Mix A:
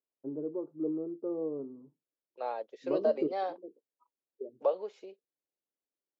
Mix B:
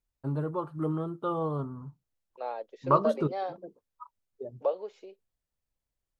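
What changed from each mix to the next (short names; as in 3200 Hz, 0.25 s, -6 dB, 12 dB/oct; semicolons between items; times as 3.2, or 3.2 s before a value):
first voice: remove Butterworth band-pass 370 Hz, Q 1.6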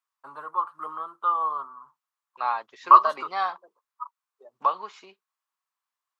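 second voice: remove ladder high-pass 470 Hz, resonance 65%; master: add resonant high-pass 1100 Hz, resonance Q 4.9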